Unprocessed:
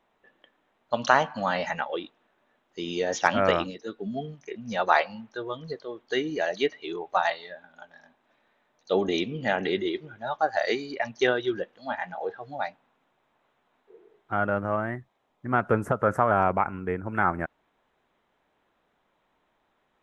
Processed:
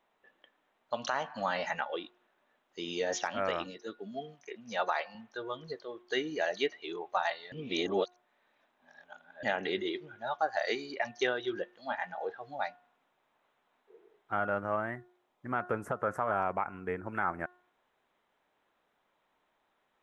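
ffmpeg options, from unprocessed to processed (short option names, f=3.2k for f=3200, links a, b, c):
-filter_complex "[0:a]asettb=1/sr,asplit=3[a][b][c];[a]atrim=end=3.994[d];[b]atrim=start=3.99:end=5.15,asetpts=PTS-STARTPTS,afade=t=in:d=0.004:c=qsin,afade=t=out:st=1.156:d=0.004:c=qsin,highpass=f=270:p=1[e];[c]atrim=start=5.146[f];[d][e]acrossfade=d=0.004:c1=hsin:c2=qsin[g];[g][f]acrossfade=d=0.004:c1=qsin:c2=hsin,asplit=3[h][i][j];[h]atrim=end=7.522[k];[i]atrim=start=7.518:end=9.432,asetpts=PTS-STARTPTS,areverse[l];[j]atrim=start=9.428[m];[k][l]acrossfade=d=0.004:c1=hsin:c2=hsin[n];[n][m]acrossfade=d=0.004:c1=hsin:c2=hsin,lowshelf=f=290:g=-8,bandreject=f=359.2:t=h:w=4,bandreject=f=718.4:t=h:w=4,bandreject=f=1.0776k:t=h:w=4,bandreject=f=1.4368k:t=h:w=4,bandreject=f=1.796k:t=h:w=4,alimiter=limit=-15.5dB:level=0:latency=1:release=283,volume=-3dB"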